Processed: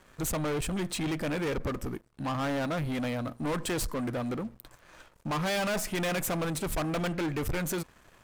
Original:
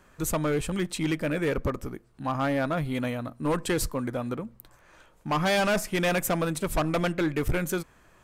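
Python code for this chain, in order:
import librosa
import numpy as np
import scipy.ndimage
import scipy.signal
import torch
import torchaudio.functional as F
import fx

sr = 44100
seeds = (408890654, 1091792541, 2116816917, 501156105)

y = fx.leveller(x, sr, passes=3)
y = y * librosa.db_to_amplitude(-7.5)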